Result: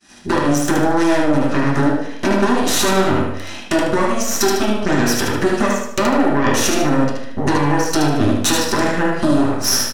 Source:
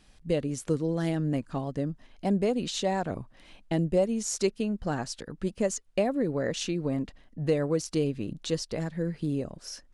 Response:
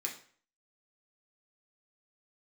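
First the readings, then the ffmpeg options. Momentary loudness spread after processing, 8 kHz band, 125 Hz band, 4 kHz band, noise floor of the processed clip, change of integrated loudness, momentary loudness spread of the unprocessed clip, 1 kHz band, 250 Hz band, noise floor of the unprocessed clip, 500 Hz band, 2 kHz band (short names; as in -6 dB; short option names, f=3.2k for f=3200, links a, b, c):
4 LU, +16.5 dB, +9.0 dB, +16.5 dB, -28 dBFS, +13.0 dB, 8 LU, +19.0 dB, +13.0 dB, -59 dBFS, +10.5 dB, +20.5 dB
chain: -filter_complex "[0:a]deesser=0.85,agate=range=-33dB:threshold=-53dB:ratio=3:detection=peak,highpass=40,lowshelf=f=190:t=q:w=1.5:g=-6,acompressor=threshold=-36dB:ratio=12,aeval=exprs='0.0631*(cos(1*acos(clip(val(0)/0.0631,-1,1)))-cos(1*PI/2))+0.0178*(cos(8*acos(clip(val(0)/0.0631,-1,1)))-cos(8*PI/2))':c=same,aecho=1:1:75|150|225|300|375:0.631|0.227|0.0818|0.0294|0.0106[a];[1:a]atrim=start_sample=2205,asetrate=33516,aresample=44100[b];[a][b]afir=irnorm=-1:irlink=0,alimiter=level_in=24dB:limit=-1dB:release=50:level=0:latency=1,volume=-4.5dB"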